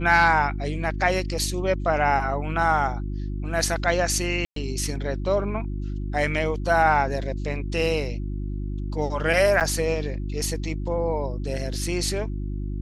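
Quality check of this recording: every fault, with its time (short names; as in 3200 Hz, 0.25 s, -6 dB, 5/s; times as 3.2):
hum 50 Hz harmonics 7 -29 dBFS
4.45–4.56 gap 0.113 s
9.6–9.61 gap 8.3 ms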